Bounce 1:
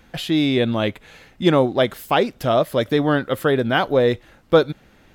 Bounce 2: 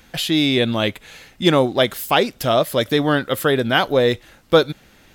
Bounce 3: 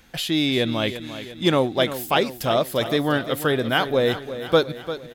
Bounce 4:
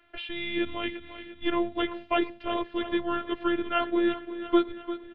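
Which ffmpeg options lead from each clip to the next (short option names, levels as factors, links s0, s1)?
-af "highshelf=f=2700:g=10"
-af "aecho=1:1:347|694|1041|1388|1735|2082:0.251|0.136|0.0732|0.0396|0.0214|0.0115,volume=0.631"
-af "highpass=f=160:t=q:w=0.5412,highpass=f=160:t=q:w=1.307,lowpass=f=3200:t=q:w=0.5176,lowpass=f=3200:t=q:w=0.7071,lowpass=f=3200:t=q:w=1.932,afreqshift=-110,afftfilt=real='hypot(re,im)*cos(PI*b)':imag='0':win_size=512:overlap=0.75,volume=0.75"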